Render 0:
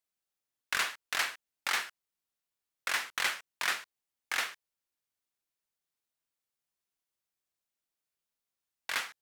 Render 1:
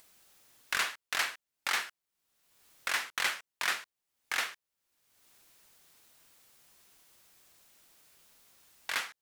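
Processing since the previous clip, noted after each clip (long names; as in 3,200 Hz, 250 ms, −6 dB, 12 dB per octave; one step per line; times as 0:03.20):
upward compression, threshold −41 dBFS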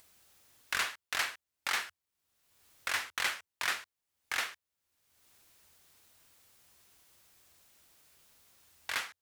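parametric band 83 Hz +11.5 dB 0.49 octaves
level −1.5 dB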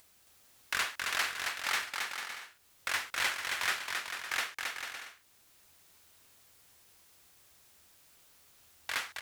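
bouncing-ball delay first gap 270 ms, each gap 0.65×, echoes 5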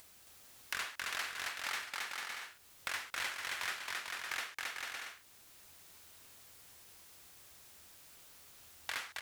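downward compressor 2.5 to 1, threshold −45 dBFS, peak gain reduction 12.5 dB
level +4 dB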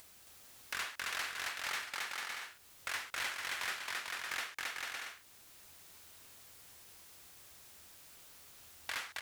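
hard clipping −31.5 dBFS, distortion −16 dB
level +1 dB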